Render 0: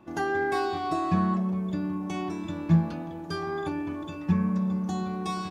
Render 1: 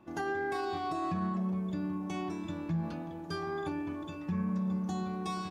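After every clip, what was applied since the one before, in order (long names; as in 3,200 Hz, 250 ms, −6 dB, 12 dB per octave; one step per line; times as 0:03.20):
brickwall limiter −21 dBFS, peak gain reduction 10 dB
level −4.5 dB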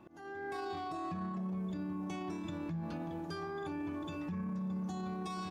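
brickwall limiter −34 dBFS, peak gain reduction 8.5 dB
volume swells 423 ms
level +1.5 dB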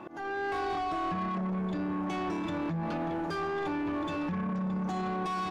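mid-hump overdrive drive 18 dB, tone 1,600 Hz, clips at −32 dBFS
level +6.5 dB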